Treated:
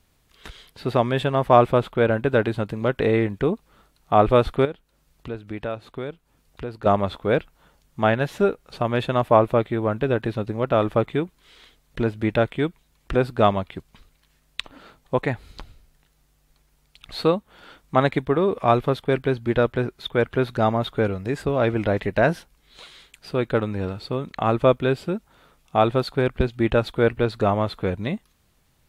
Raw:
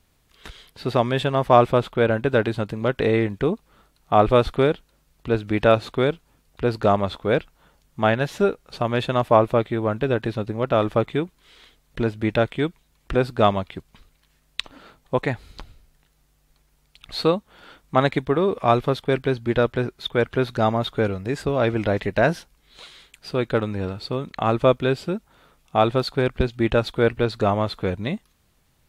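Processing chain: dynamic bell 5.5 kHz, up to -5 dB, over -46 dBFS, Q 0.94; 4.65–6.86 s: compression 2:1, threshold -37 dBFS, peak gain reduction 14 dB

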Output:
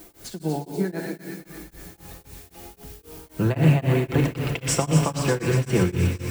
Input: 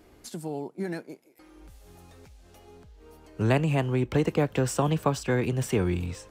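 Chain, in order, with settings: treble shelf 8.7 kHz -10 dB; in parallel at +1.5 dB: peak limiter -23.5 dBFS, peak gain reduction 11 dB; 4.20–4.75 s: on the sum: compressor with a negative ratio -29 dBFS, ratio -1; added noise blue -49 dBFS; feedback echo behind a high-pass 120 ms, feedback 80%, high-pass 1.6 kHz, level -6 dB; on a send at -2 dB: reverberation RT60 1.9 s, pre-delay 6 ms; on the sum: tremolo of two beating tones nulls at 3.8 Hz

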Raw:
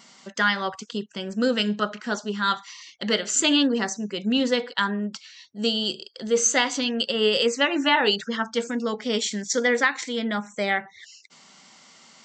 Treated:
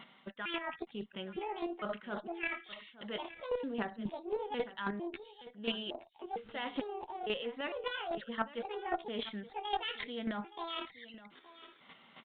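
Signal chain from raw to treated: pitch shift switched off and on +9 st, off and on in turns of 454 ms; dynamic bell 710 Hz, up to +4 dB, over -38 dBFS, Q 1.4; reverse; compression 6:1, threshold -31 dBFS, peak gain reduction 15.5 dB; reverse; square tremolo 3.7 Hz, depth 60%, duty 15%; Chebyshev shaper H 2 -11 dB, 4 -15 dB, 6 -36 dB, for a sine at -20 dBFS; on a send: delay 870 ms -16.5 dB; on the sum: resampled via 8 kHz; loudspeaker Doppler distortion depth 0.18 ms; trim +1.5 dB

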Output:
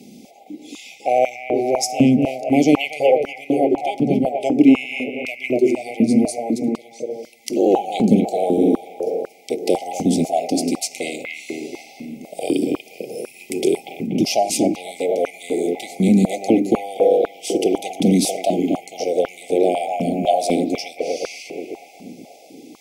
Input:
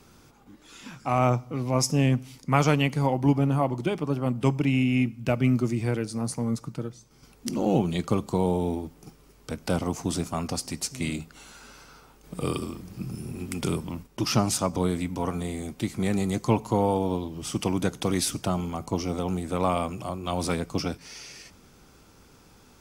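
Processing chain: bucket-brigade echo 240 ms, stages 4096, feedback 58%, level -4 dB; in parallel at +1 dB: compression, threshold -31 dBFS, peak gain reduction 15.5 dB; on the sum: FFT band-reject 820–2000 Hz; step-sequenced high-pass 4 Hz 220–1500 Hz; trim +1.5 dB

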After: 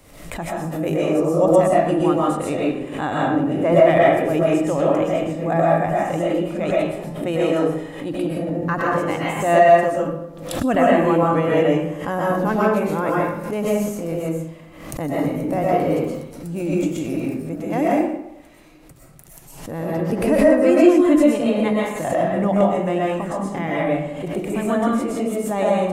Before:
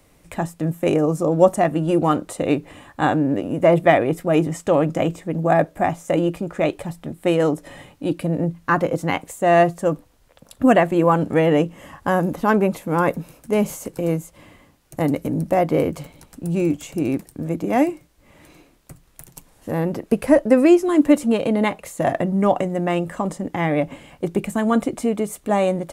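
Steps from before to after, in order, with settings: algorithmic reverb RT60 0.84 s, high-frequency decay 0.65×, pre-delay 85 ms, DRR -5.5 dB; swell ahead of each attack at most 66 dB/s; trim -6.5 dB

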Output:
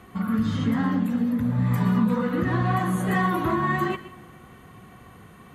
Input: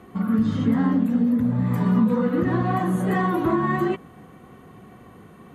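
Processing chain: peaking EQ 350 Hz -9 dB 2.7 oct; reverberation, pre-delay 111 ms, DRR 13 dB; trim +4 dB

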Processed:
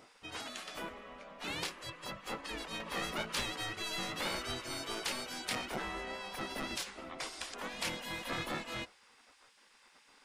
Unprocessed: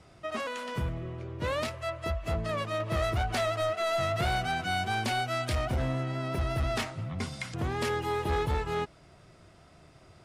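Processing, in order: hum 50 Hz, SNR 13 dB; hum notches 50/100/150/200/250 Hz; spectral gate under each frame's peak -15 dB weak; trim +1 dB

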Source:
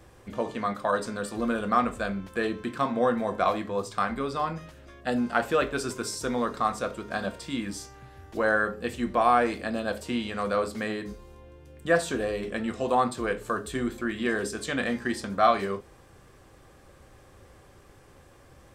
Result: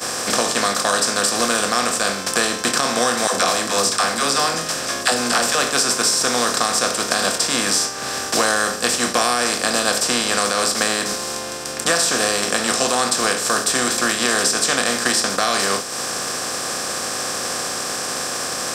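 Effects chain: spectral levelling over time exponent 0.4; high-pass 77 Hz; pre-emphasis filter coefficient 0.8; expander -29 dBFS; peaking EQ 5.4 kHz +10.5 dB 1.4 oct; compression 4:1, threshold -44 dBFS, peak gain reduction 17.5 dB; 3.27–5.55 s: phase dispersion lows, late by 71 ms, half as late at 380 Hz; loudness maximiser +29.5 dB; three bands compressed up and down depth 40%; trim -3 dB

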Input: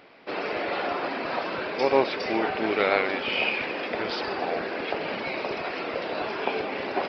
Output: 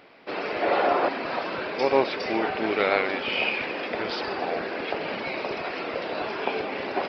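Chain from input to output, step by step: 0.62–1.09 s: peaking EQ 630 Hz +8 dB 2.5 oct

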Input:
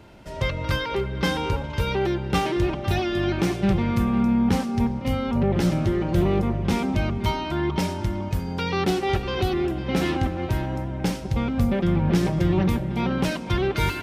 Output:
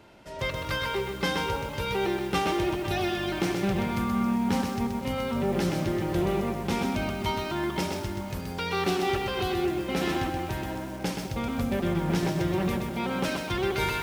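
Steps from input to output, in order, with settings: bass shelf 180 Hz -10 dB; bit-crushed delay 127 ms, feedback 35%, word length 7-bit, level -4 dB; trim -2.5 dB

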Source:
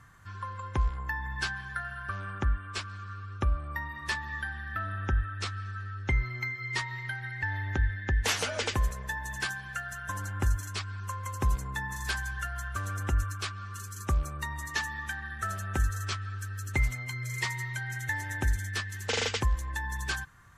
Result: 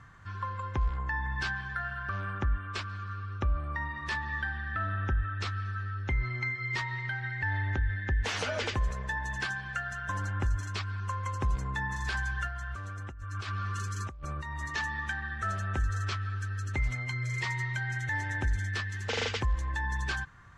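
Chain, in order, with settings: peak limiter -24 dBFS, peak gain reduction 8.5 dB; 12.47–14.61 s: compressor with a negative ratio -40 dBFS, ratio -1; distance through air 99 m; trim +3 dB

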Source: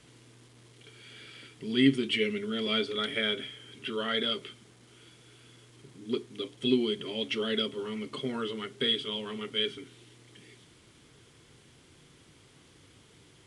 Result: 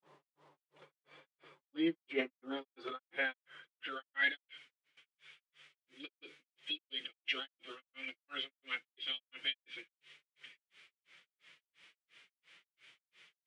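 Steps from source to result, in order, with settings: gate with hold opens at -48 dBFS; band-pass sweep 830 Hz -> 2.3 kHz, 2.46–4.66 s; formant-preserving pitch shift +3.5 st; granulator 239 ms, grains 2.9 per s, pitch spread up and down by 0 st; trim +8 dB

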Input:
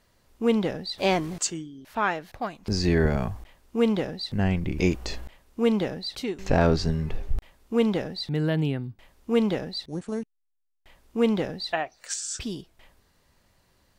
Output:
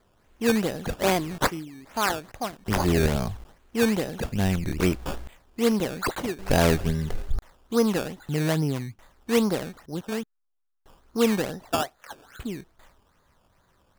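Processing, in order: low-pass sweep 6.1 kHz -> 1.4 kHz, 5.75–7.42 s; decimation with a swept rate 15×, swing 100% 2.4 Hz

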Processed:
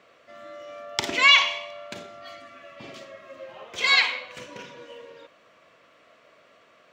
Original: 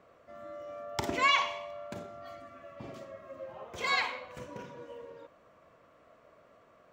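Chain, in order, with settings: frequency weighting D; trim +2.5 dB

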